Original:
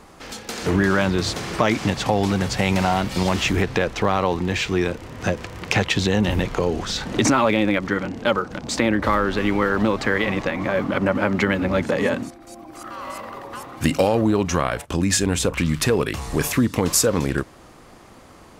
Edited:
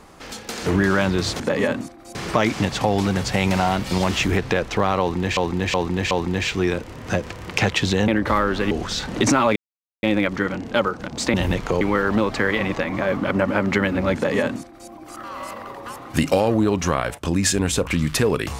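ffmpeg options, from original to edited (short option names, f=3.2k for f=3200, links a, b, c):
-filter_complex "[0:a]asplit=11[a][b][c][d][e][f][g][h][i][j][k];[a]atrim=end=1.402[l];[b]atrim=start=11.818:end=12.572[m];[c]atrim=start=1.398:end=4.622[n];[d]atrim=start=4.248:end=4.622[o];[e]atrim=start=4.248:end=4.622[p];[f]atrim=start=4.248:end=6.222[q];[g]atrim=start=8.848:end=9.482[r];[h]atrim=start=6.688:end=7.54,asetpts=PTS-STARTPTS,afade=t=out:st=0.848:d=0.004:c=hsin,apad=pad_dur=0.47[s];[i]atrim=start=7.54:end=8.852,asetpts=PTS-STARTPTS,afade=t=in:d=0.004:c=hsin[t];[j]atrim=start=6.218:end=6.692[u];[k]atrim=start=9.478[v];[l][m]acrossfade=d=0.004:c1=hsin:c2=hsin[w];[w][n]acrossfade=d=0.004:c1=hsin:c2=hsin[x];[x][o]acrossfade=d=0.004:c1=hsin:c2=hsin[y];[y][p]acrossfade=d=0.004:c1=hsin:c2=hsin[z];[z][q]acrossfade=d=0.004:c1=hsin:c2=hsin[aa];[aa][r]acrossfade=d=0.004:c1=hsin:c2=hsin[ab];[s][t]concat=n=2:v=0:a=1[ac];[ab][ac]acrossfade=d=0.004:c1=hsin:c2=hsin[ad];[ad][u]acrossfade=d=0.004:c1=hsin:c2=hsin[ae];[ae][v]acrossfade=d=0.004:c1=hsin:c2=hsin"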